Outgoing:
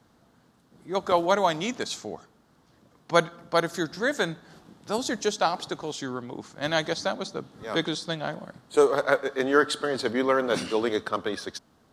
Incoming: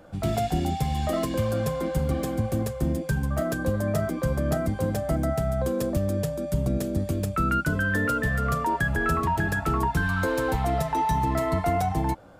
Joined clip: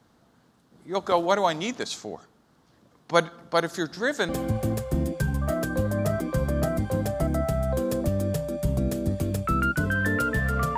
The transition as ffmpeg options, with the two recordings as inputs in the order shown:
-filter_complex "[0:a]apad=whole_dur=10.77,atrim=end=10.77,atrim=end=4.292[s0];[1:a]atrim=start=2.178:end=8.66[s1];[s0][s1]acrossfade=d=0.004:c1=hsin:c2=hsin"

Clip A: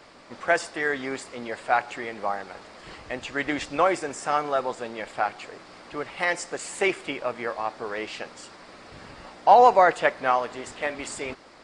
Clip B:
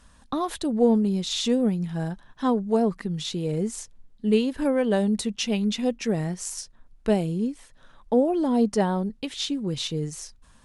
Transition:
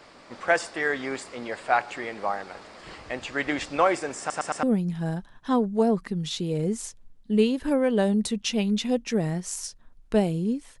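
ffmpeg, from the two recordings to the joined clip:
-filter_complex "[0:a]apad=whole_dur=10.8,atrim=end=10.8,asplit=4[s0][s1][s2][s3];[s0]atrim=end=4.302[s4];[s1]atrim=start=4.188:end=4.302[s5];[s2]atrim=start=4.188:end=4.302[s6];[s3]atrim=start=4.188:end=4.302[s7];[1:a]atrim=start=1.568:end=7.74[s8];[s4][s5]acrossfade=d=0.004:c1=hsin:c2=hsin[s9];[s9][s6]acrossfade=d=0.004:c1=hsin:c2=hsin[s10];[s10][s7]acrossfade=d=0.004:c1=hsin:c2=hsin[s11];[s11][s8]acrossfade=d=0.004:c1=hsin:c2=hsin"

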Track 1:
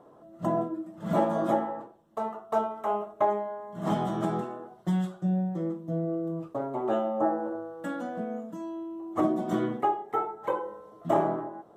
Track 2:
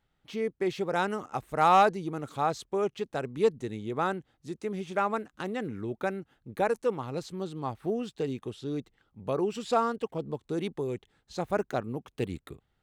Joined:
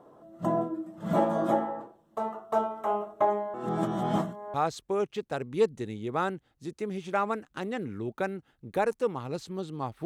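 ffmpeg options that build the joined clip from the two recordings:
-filter_complex "[0:a]apad=whole_dur=10.05,atrim=end=10.05,asplit=2[s0][s1];[s0]atrim=end=3.542[s2];[s1]atrim=start=3.538:end=4.542,asetpts=PTS-STARTPTS,areverse[s3];[1:a]atrim=start=2.368:end=7.88[s4];[s2][s3]acrossfade=d=0.004:c1=hsin:c2=hsin[s5];[s5][s4]acrossfade=d=0.004:c1=hsin:c2=hsin"

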